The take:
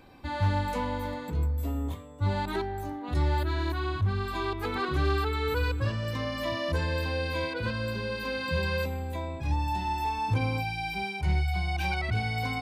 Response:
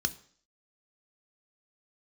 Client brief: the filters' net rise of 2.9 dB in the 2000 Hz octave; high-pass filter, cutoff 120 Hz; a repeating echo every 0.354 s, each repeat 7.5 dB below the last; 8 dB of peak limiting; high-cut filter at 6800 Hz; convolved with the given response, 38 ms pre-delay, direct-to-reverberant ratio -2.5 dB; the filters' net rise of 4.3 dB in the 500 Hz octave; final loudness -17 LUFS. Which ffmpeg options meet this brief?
-filter_complex "[0:a]highpass=120,lowpass=6.8k,equalizer=f=500:t=o:g=5,equalizer=f=2k:t=o:g=3.5,alimiter=limit=-24dB:level=0:latency=1,aecho=1:1:354|708|1062|1416|1770:0.422|0.177|0.0744|0.0312|0.0131,asplit=2[a][b];[1:a]atrim=start_sample=2205,adelay=38[c];[b][c]afir=irnorm=-1:irlink=0,volume=-2.5dB[d];[a][d]amix=inputs=2:normalize=0,volume=10dB"

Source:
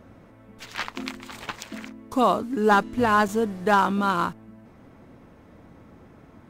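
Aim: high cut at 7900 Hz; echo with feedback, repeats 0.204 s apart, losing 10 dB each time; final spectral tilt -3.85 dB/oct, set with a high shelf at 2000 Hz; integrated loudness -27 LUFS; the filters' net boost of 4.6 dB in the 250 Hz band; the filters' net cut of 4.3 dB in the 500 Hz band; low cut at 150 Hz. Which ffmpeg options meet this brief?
-af "highpass=150,lowpass=7.9k,equalizer=f=250:t=o:g=8,equalizer=f=500:t=o:g=-8,highshelf=f=2k:g=4,aecho=1:1:204|408|612|816:0.316|0.101|0.0324|0.0104,volume=-4dB"

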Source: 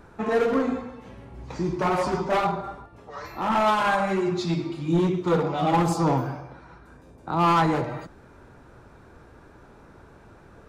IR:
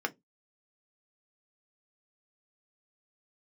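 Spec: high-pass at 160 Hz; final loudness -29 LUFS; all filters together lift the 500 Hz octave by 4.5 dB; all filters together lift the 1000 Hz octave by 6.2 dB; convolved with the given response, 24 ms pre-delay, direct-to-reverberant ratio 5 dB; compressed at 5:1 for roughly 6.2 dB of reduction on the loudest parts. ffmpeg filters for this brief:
-filter_complex "[0:a]highpass=160,equalizer=f=500:t=o:g=4,equalizer=f=1k:t=o:g=6.5,acompressor=threshold=-18dB:ratio=5,asplit=2[a][b];[1:a]atrim=start_sample=2205,adelay=24[c];[b][c]afir=irnorm=-1:irlink=0,volume=-11dB[d];[a][d]amix=inputs=2:normalize=0,volume=-6dB"

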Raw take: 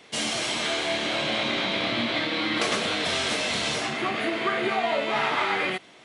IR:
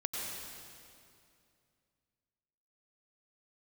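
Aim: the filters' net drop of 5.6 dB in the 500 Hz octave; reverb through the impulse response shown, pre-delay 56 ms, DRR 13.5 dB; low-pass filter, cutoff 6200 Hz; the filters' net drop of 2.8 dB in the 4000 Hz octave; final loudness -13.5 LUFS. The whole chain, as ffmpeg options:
-filter_complex "[0:a]lowpass=6.2k,equalizer=f=500:t=o:g=-8,equalizer=f=4k:t=o:g=-3,asplit=2[a][b];[1:a]atrim=start_sample=2205,adelay=56[c];[b][c]afir=irnorm=-1:irlink=0,volume=-17dB[d];[a][d]amix=inputs=2:normalize=0,volume=14dB"

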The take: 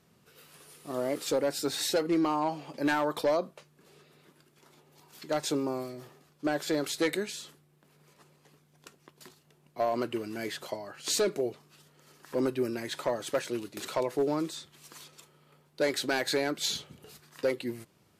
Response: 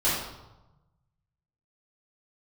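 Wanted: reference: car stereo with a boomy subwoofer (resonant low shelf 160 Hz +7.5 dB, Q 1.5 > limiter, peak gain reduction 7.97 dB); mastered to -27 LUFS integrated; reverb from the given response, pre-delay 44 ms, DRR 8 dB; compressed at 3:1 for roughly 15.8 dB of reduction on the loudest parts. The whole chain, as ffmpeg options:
-filter_complex "[0:a]acompressor=threshold=-46dB:ratio=3,asplit=2[a][b];[1:a]atrim=start_sample=2205,adelay=44[c];[b][c]afir=irnorm=-1:irlink=0,volume=-21dB[d];[a][d]amix=inputs=2:normalize=0,lowshelf=f=160:t=q:w=1.5:g=7.5,volume=21dB,alimiter=limit=-16dB:level=0:latency=1"

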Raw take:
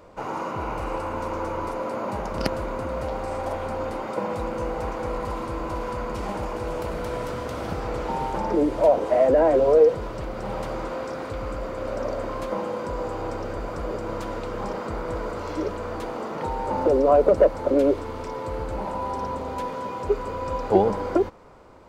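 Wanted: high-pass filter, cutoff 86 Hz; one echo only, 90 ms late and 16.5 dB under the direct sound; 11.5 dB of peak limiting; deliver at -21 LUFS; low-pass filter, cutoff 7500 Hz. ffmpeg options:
-af "highpass=86,lowpass=7.5k,alimiter=limit=-15.5dB:level=0:latency=1,aecho=1:1:90:0.15,volume=7.5dB"

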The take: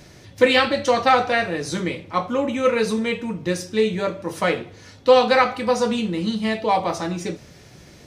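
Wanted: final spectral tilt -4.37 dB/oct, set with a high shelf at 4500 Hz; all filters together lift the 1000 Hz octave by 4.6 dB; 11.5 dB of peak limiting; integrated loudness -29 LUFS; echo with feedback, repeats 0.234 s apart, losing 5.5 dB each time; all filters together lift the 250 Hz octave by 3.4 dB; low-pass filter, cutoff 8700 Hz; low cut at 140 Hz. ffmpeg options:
-af "highpass=140,lowpass=8.7k,equalizer=f=250:t=o:g=4.5,equalizer=f=1k:t=o:g=5.5,highshelf=f=4.5k:g=7.5,alimiter=limit=-10dB:level=0:latency=1,aecho=1:1:234|468|702|936|1170|1404|1638:0.531|0.281|0.149|0.079|0.0419|0.0222|0.0118,volume=-8.5dB"

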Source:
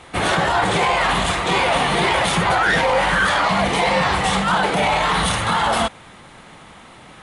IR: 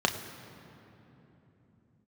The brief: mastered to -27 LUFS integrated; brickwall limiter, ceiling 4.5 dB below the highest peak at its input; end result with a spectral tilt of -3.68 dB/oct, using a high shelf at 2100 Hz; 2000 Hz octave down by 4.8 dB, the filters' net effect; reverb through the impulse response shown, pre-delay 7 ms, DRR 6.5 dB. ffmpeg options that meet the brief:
-filter_complex "[0:a]equalizer=f=2k:t=o:g=-8.5,highshelf=f=2.1k:g=4,alimiter=limit=-12dB:level=0:latency=1,asplit=2[a][b];[1:a]atrim=start_sample=2205,adelay=7[c];[b][c]afir=irnorm=-1:irlink=0,volume=-18dB[d];[a][d]amix=inputs=2:normalize=0,volume=-7.5dB"

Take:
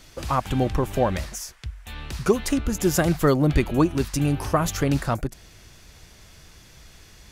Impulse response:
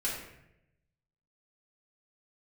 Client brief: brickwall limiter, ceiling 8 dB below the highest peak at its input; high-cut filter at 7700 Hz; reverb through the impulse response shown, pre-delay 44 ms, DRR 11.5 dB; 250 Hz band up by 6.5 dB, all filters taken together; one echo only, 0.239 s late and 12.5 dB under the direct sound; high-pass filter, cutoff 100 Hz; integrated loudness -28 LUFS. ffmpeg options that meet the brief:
-filter_complex "[0:a]highpass=100,lowpass=7.7k,equalizer=f=250:t=o:g=8.5,alimiter=limit=-11dB:level=0:latency=1,aecho=1:1:239:0.237,asplit=2[a][b];[1:a]atrim=start_sample=2205,adelay=44[c];[b][c]afir=irnorm=-1:irlink=0,volume=-17dB[d];[a][d]amix=inputs=2:normalize=0,volume=-6.5dB"

